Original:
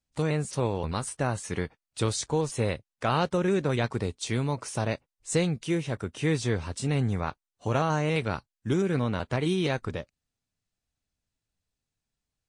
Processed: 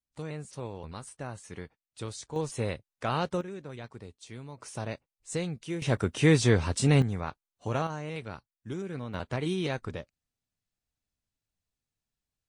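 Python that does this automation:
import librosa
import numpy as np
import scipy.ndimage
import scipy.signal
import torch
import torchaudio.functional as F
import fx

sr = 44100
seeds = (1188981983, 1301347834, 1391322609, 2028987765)

y = fx.gain(x, sr, db=fx.steps((0.0, -11.0), (2.36, -4.0), (3.41, -15.5), (4.6, -7.0), (5.82, 5.0), (7.02, -4.0), (7.87, -10.5), (9.14, -4.0)))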